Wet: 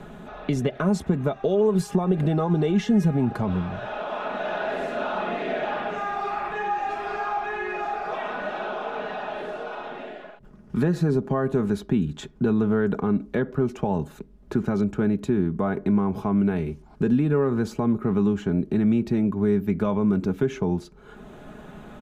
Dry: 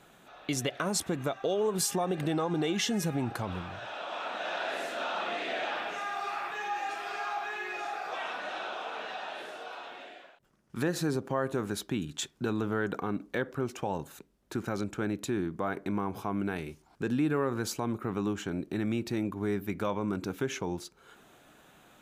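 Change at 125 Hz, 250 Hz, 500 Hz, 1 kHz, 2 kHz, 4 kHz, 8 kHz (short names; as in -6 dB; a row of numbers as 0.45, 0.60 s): +11.0 dB, +10.5 dB, +8.0 dB, +5.5 dB, +2.5 dB, -4.0 dB, n/a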